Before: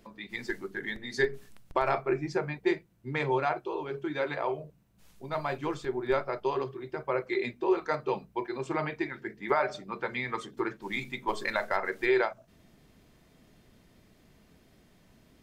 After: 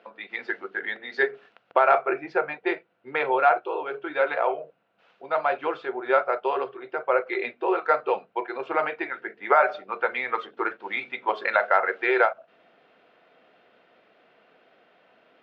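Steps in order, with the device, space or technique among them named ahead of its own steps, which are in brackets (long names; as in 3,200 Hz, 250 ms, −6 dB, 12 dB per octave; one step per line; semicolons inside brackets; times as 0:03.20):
phone earpiece (loudspeaker in its box 440–3,500 Hz, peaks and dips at 500 Hz +8 dB, 720 Hz +8 dB, 1,400 Hz +10 dB, 2,700 Hz +5 dB)
level +3 dB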